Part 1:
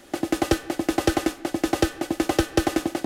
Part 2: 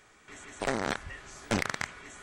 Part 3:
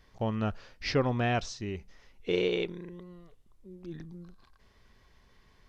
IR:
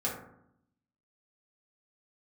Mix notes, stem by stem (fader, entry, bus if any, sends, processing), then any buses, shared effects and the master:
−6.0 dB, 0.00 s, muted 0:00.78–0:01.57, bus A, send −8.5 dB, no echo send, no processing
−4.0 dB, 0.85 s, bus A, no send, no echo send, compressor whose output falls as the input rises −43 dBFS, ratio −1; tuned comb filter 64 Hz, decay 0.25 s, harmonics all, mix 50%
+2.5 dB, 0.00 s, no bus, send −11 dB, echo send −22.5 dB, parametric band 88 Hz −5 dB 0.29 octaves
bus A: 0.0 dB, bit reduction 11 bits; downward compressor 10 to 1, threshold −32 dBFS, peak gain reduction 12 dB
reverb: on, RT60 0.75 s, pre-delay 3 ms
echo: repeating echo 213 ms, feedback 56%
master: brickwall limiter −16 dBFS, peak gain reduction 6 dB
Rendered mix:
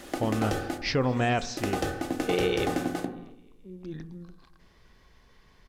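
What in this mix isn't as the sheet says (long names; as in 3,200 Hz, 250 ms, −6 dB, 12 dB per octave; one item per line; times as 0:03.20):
stem 1 −6.0 dB → +2.5 dB
reverb return −7.5 dB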